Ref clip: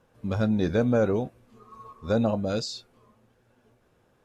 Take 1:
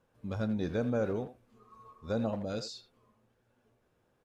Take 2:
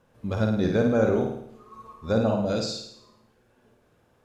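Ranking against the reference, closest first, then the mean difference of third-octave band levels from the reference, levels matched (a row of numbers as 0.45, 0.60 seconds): 1, 2; 1.0, 4.0 decibels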